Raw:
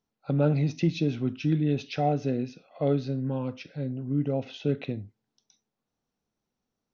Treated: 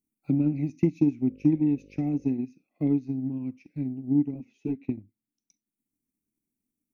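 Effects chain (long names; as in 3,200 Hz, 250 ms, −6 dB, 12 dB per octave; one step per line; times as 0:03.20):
drawn EQ curve 160 Hz 0 dB, 300 Hz +10 dB, 530 Hz −16 dB, 990 Hz −13 dB, 1,500 Hz −18 dB, 2,300 Hz +3 dB, 3,300 Hz −18 dB, 5,100 Hz −8 dB, 8,600 Hz +14 dB
transient designer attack +7 dB, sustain −7 dB
0:01.20–0:02.33: hum with harmonics 50 Hz, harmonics 11, −49 dBFS −1 dB per octave
0:04.34–0:04.89: string-ensemble chorus
level −6 dB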